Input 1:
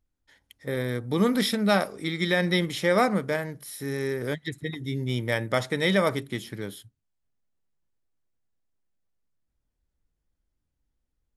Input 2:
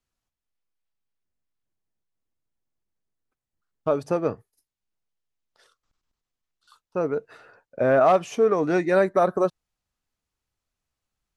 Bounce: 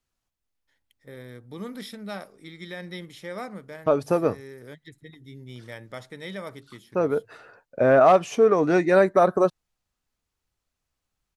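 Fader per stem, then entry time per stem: −13.5, +2.0 decibels; 0.40, 0.00 seconds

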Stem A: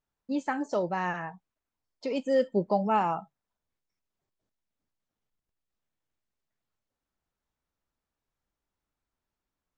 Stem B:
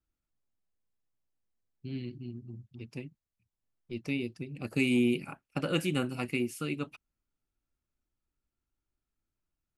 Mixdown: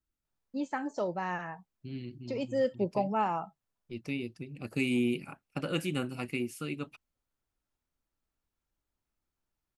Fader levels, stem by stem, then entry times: −4.0, −2.5 decibels; 0.25, 0.00 seconds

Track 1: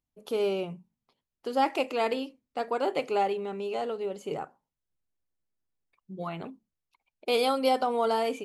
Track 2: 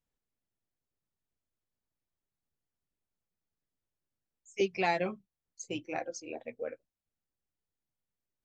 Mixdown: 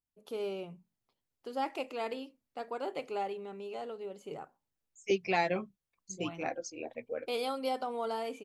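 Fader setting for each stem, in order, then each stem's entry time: −9.0, 0.0 decibels; 0.00, 0.50 seconds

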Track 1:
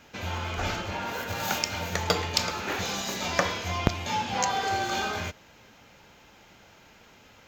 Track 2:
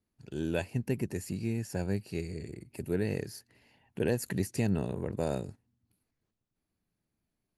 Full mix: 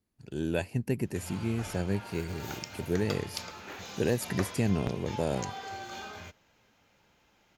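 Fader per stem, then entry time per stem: −12.5, +1.5 decibels; 1.00, 0.00 seconds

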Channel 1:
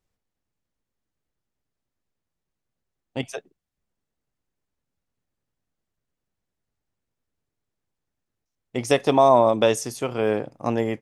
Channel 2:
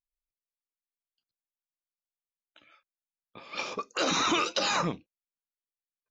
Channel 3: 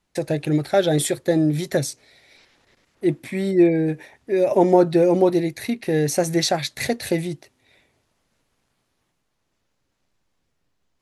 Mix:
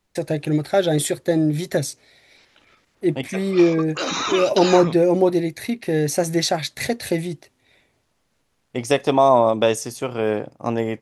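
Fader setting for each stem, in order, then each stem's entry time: +1.0, +2.5, 0.0 decibels; 0.00, 0.00, 0.00 seconds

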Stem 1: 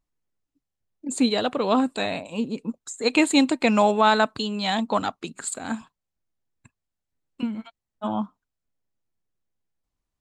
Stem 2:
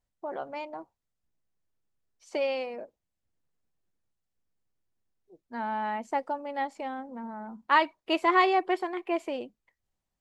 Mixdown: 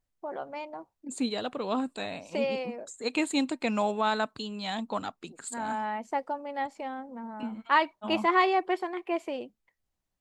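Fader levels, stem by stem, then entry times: −9.0, −1.0 decibels; 0.00, 0.00 seconds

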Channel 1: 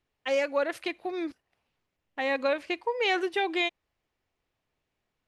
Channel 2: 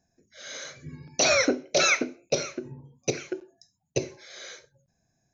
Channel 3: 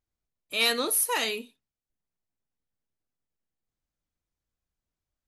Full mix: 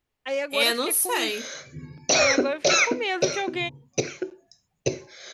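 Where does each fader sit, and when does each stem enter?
−1.0, +2.0, +2.0 decibels; 0.00, 0.90, 0.00 seconds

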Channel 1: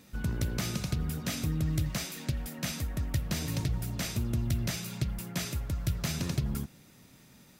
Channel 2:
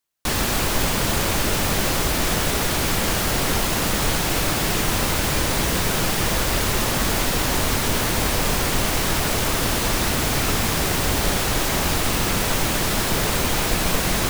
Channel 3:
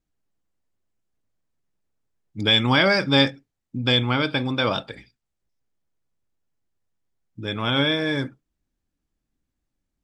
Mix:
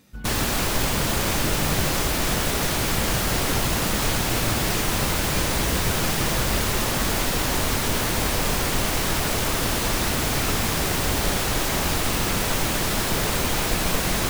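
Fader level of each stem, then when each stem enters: −0.5 dB, −2.0 dB, muted; 0.00 s, 0.00 s, muted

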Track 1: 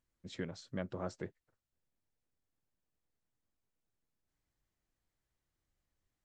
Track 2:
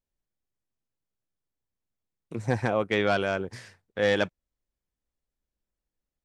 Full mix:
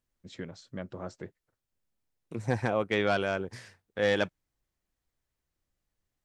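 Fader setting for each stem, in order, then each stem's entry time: +0.5, −2.5 decibels; 0.00, 0.00 seconds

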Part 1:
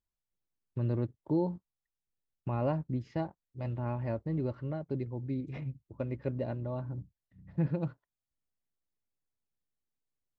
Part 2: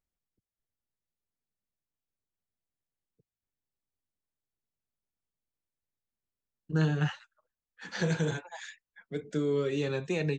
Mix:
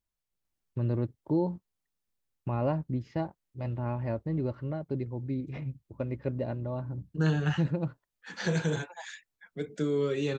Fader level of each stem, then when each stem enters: +2.0, +0.5 decibels; 0.00, 0.45 seconds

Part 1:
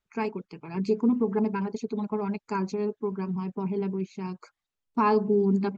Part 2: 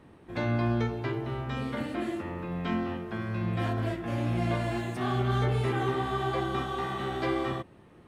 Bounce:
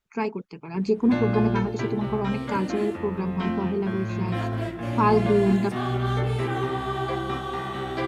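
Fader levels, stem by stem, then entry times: +2.5, +2.0 decibels; 0.00, 0.75 seconds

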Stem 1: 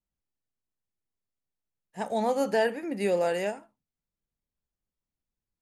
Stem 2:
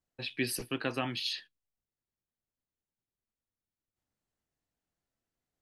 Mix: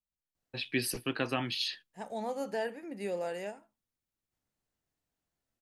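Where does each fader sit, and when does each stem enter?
−9.5, +1.0 decibels; 0.00, 0.35 seconds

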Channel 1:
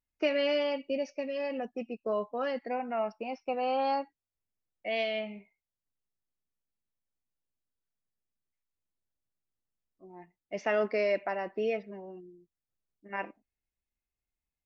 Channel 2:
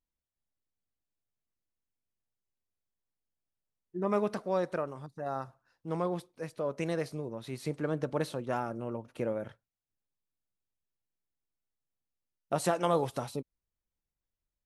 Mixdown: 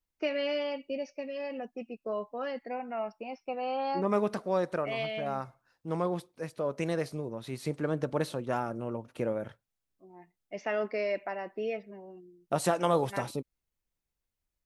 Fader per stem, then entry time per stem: −3.0, +1.5 decibels; 0.00, 0.00 seconds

